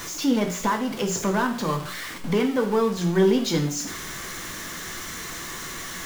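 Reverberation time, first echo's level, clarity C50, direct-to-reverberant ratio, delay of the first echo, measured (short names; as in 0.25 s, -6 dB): 0.55 s, none, 9.5 dB, 3.0 dB, none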